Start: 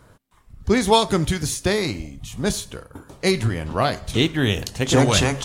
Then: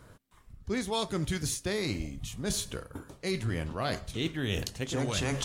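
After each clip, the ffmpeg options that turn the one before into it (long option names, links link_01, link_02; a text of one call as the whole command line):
ffmpeg -i in.wav -af "equalizer=frequency=840:width=1.9:gain=-3,areverse,acompressor=threshold=-26dB:ratio=6,areverse,volume=-2.5dB" out.wav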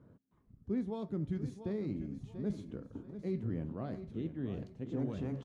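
ffmpeg -i in.wav -af "alimiter=limit=-21dB:level=0:latency=1:release=408,bandpass=frequency=220:width_type=q:width=1.2:csg=0,aecho=1:1:688|1376|2064:0.282|0.0874|0.0271" out.wav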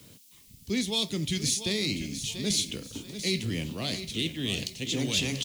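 ffmpeg -i in.wav -filter_complex "[0:a]acrossover=split=240|330|1600[link_01][link_02][link_03][link_04];[link_04]aeval=exprs='0.00501*sin(PI/2*1.78*val(0)/0.00501)':channel_layout=same[link_05];[link_01][link_02][link_03][link_05]amix=inputs=4:normalize=0,aexciter=amount=14.4:drive=4.1:freq=2300,volume=5dB" out.wav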